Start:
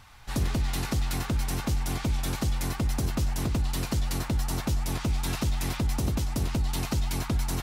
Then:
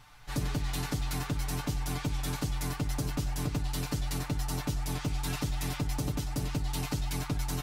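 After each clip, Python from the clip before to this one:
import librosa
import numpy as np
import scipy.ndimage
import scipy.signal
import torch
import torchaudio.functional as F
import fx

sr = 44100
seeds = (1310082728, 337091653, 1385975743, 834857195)

y = x + 0.74 * np.pad(x, (int(6.8 * sr / 1000.0), 0))[:len(x)]
y = y * 10.0 ** (-5.0 / 20.0)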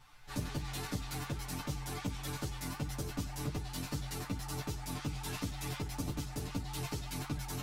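y = fx.ensemble(x, sr)
y = y * 10.0 ** (-1.5 / 20.0)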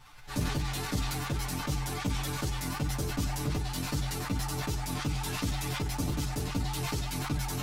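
y = fx.sustainer(x, sr, db_per_s=32.0)
y = y * 10.0 ** (5.0 / 20.0)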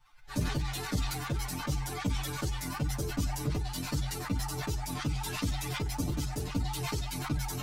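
y = fx.bin_expand(x, sr, power=1.5)
y = y * 10.0 ** (2.0 / 20.0)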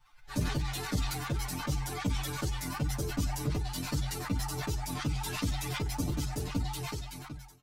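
y = fx.fade_out_tail(x, sr, length_s=1.1)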